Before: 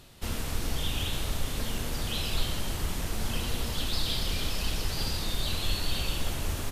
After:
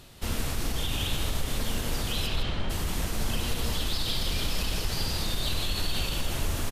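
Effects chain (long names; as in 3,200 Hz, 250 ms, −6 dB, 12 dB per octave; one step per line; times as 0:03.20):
0:02.26–0:02.69: low-pass filter 4,800 Hz → 2,300 Hz 12 dB per octave
brickwall limiter −21.5 dBFS, peak gain reduction 6 dB
single-tap delay 159 ms −9.5 dB
level +2.5 dB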